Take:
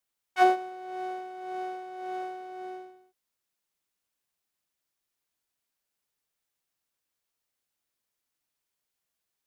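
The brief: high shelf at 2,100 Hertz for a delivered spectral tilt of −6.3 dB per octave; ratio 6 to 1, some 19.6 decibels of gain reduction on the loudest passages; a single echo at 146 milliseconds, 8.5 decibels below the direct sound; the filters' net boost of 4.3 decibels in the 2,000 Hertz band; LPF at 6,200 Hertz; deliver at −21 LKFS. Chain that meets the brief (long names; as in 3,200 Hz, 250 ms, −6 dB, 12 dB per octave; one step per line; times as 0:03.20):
low-pass filter 6,200 Hz
parametric band 2,000 Hz +9 dB
high-shelf EQ 2,100 Hz −4.5 dB
downward compressor 6 to 1, threshold −37 dBFS
single-tap delay 146 ms −8.5 dB
level +18 dB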